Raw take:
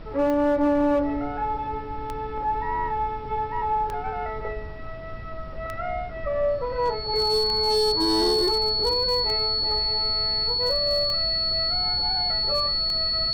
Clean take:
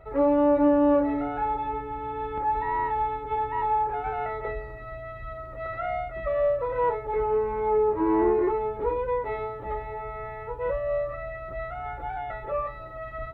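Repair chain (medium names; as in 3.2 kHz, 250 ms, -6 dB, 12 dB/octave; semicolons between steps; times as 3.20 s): clip repair -16.5 dBFS; de-click; band-stop 4.4 kHz, Q 30; noise print and reduce 6 dB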